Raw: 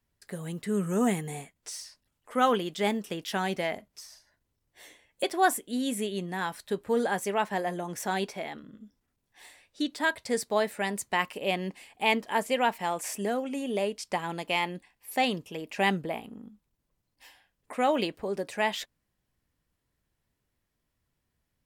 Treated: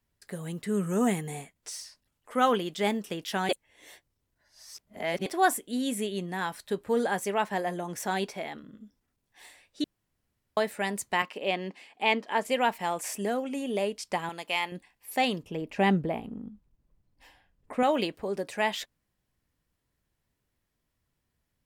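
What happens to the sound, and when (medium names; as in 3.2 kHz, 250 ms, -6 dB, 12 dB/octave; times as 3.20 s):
3.49–5.26 s: reverse
9.84–10.57 s: room tone
11.22–12.45 s: three-band isolator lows -22 dB, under 170 Hz, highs -14 dB, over 6.3 kHz
14.29–14.72 s: bass shelf 430 Hz -11.5 dB
15.43–17.83 s: tilt EQ -2.5 dB/octave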